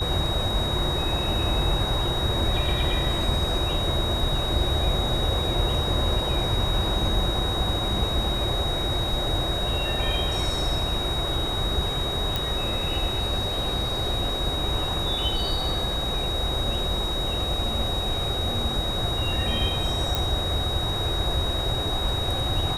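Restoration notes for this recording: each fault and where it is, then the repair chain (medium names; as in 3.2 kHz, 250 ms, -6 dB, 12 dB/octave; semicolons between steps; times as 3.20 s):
whine 3.8 kHz -28 dBFS
12.36 s: pop
20.15 s: pop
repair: de-click; band-stop 3.8 kHz, Q 30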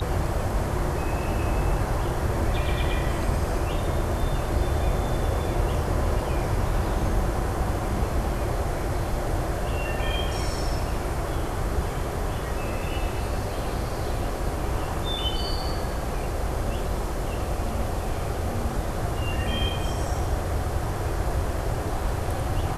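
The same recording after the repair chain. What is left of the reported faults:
nothing left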